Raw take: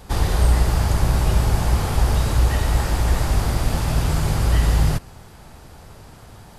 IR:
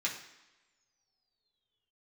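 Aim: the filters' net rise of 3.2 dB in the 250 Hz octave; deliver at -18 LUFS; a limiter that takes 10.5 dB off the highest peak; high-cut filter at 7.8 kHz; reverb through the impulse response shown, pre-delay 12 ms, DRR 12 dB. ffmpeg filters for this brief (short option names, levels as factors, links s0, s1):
-filter_complex "[0:a]lowpass=7800,equalizer=f=250:t=o:g=5,alimiter=limit=0.168:level=0:latency=1,asplit=2[s0][s1];[1:a]atrim=start_sample=2205,adelay=12[s2];[s1][s2]afir=irnorm=-1:irlink=0,volume=0.15[s3];[s0][s3]amix=inputs=2:normalize=0,volume=2.24"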